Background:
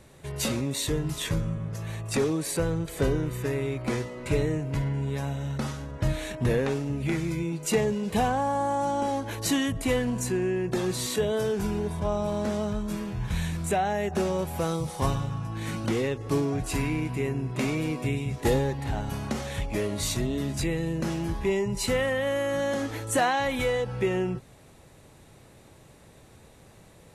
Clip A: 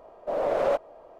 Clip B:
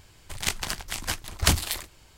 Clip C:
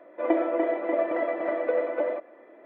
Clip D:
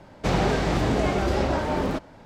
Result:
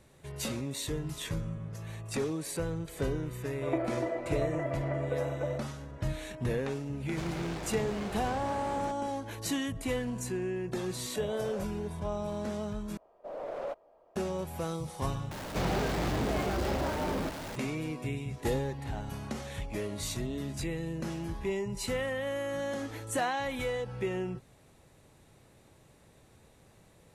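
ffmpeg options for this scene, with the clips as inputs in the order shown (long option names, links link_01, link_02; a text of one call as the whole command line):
ffmpeg -i bed.wav -i cue0.wav -i cue1.wav -i cue2.wav -i cue3.wav -filter_complex "[4:a]asplit=2[link_01][link_02];[1:a]asplit=2[link_03][link_04];[0:a]volume=-7dB[link_05];[link_01]volume=29.5dB,asoftclip=hard,volume=-29.5dB[link_06];[link_02]aeval=exprs='val(0)+0.5*0.0562*sgn(val(0))':channel_layout=same[link_07];[link_05]asplit=3[link_08][link_09][link_10];[link_08]atrim=end=12.974[link_11];[link_04]atrim=end=1.19,asetpts=PTS-STARTPTS,volume=-13dB[link_12];[link_09]atrim=start=14.156:end=15.314[link_13];[link_07]atrim=end=2.25,asetpts=PTS-STARTPTS,volume=-10dB[link_14];[link_10]atrim=start=17.556[link_15];[3:a]atrim=end=2.65,asetpts=PTS-STARTPTS,volume=-8dB,afade=type=in:duration=0.004:curve=hsin,afade=type=out:start_time=2.646:duration=0.004:curve=hsin,adelay=3430[link_16];[link_06]atrim=end=2.25,asetpts=PTS-STARTPTS,volume=-8.5dB,afade=type=in:duration=0.004:curve=hsin,afade=type=out:start_time=2.246:duration=0.004:curve=hsin,adelay=6930[link_17];[link_03]atrim=end=1.19,asetpts=PTS-STARTPTS,volume=-17dB,afade=type=in:duration=0.004:curve=hsin,afade=type=out:start_time=1.186:duration=0.004:curve=hsin,adelay=10880[link_18];[link_11][link_12]acrossfade=duration=0.004:curve1=hsin:curve2=hsin[link_19];[link_19][link_13]acrossfade=duration=0.004:curve1=hsin:curve2=hsin[link_20];[link_20][link_14]acrossfade=duration=0.004:curve1=hsin:curve2=hsin[link_21];[link_21][link_15]acrossfade=duration=0.004:curve1=hsin:curve2=hsin[link_22];[link_22][link_16][link_17][link_18]amix=inputs=4:normalize=0" out.wav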